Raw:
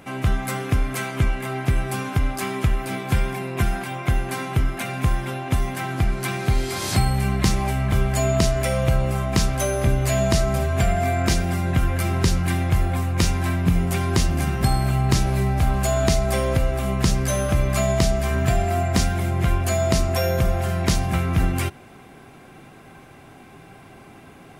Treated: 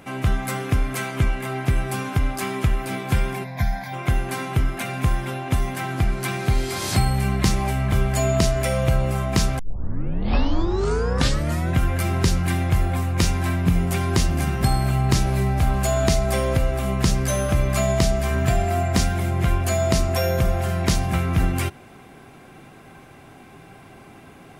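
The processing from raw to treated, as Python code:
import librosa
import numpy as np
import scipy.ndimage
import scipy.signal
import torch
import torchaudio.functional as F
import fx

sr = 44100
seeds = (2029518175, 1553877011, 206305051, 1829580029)

y = fx.fixed_phaser(x, sr, hz=1900.0, stages=8, at=(3.43, 3.92), fade=0.02)
y = fx.edit(y, sr, fx.tape_start(start_s=9.59, length_s=2.17), tone=tone)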